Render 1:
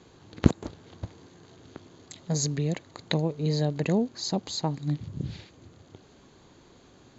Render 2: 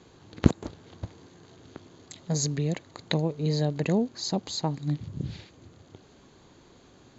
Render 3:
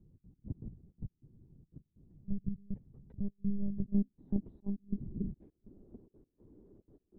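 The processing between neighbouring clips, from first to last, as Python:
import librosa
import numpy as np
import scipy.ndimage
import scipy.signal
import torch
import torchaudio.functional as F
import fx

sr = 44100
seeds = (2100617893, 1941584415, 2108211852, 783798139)

y1 = x
y2 = fx.step_gate(y1, sr, bpm=183, pattern='xx.x..xxx', floor_db=-24.0, edge_ms=4.5)
y2 = fx.lpc_monotone(y2, sr, seeds[0], pitch_hz=200.0, order=16)
y2 = fx.filter_sweep_lowpass(y2, sr, from_hz=160.0, to_hz=340.0, start_s=3.61, end_s=5.01, q=1.6)
y2 = y2 * librosa.db_to_amplitude(-4.5)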